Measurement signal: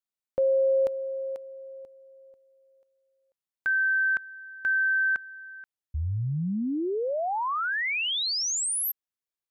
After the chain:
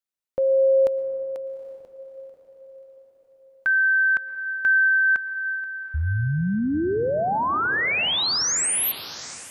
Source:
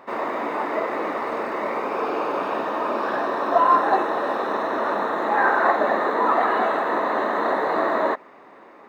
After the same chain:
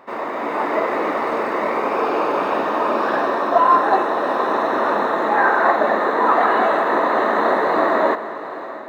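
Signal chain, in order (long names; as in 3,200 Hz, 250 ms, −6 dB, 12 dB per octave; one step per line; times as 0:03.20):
on a send: feedback delay with all-pass diffusion 820 ms, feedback 43%, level −14 dB
on the sum: automatic gain control gain up to 5 dB
dense smooth reverb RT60 1.5 s, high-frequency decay 0.25×, pre-delay 100 ms, DRR 16 dB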